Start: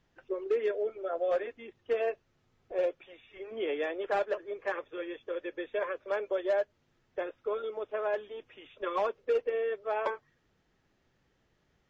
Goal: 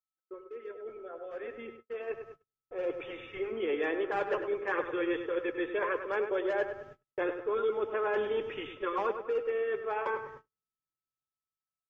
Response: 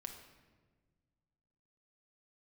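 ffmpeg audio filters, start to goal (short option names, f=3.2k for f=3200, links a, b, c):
-filter_complex "[0:a]equalizer=f=125:t=o:w=0.33:g=7,equalizer=f=630:t=o:w=0.33:g=-11,equalizer=f=4k:t=o:w=0.33:g=-7,areverse,acompressor=threshold=-41dB:ratio=16,areverse,aemphasis=mode=reproduction:type=cd,asplit=2[a][b];[b]adelay=100,lowpass=f=3k:p=1,volume=-8.5dB,asplit=2[c][d];[d]adelay=100,lowpass=f=3k:p=1,volume=0.48,asplit=2[e][f];[f]adelay=100,lowpass=f=3k:p=1,volume=0.48,asplit=2[g][h];[h]adelay=100,lowpass=f=3k:p=1,volume=0.48,asplit=2[i][j];[j]adelay=100,lowpass=f=3k:p=1,volume=0.48[k];[c][e][g][i][k]amix=inputs=5:normalize=0[l];[a][l]amix=inputs=2:normalize=0,dynaudnorm=f=550:g=9:m=13dB,aeval=exprs='val(0)+0.00141*sin(2*PI*1300*n/s)':c=same,agate=range=-44dB:threshold=-48dB:ratio=16:detection=peak"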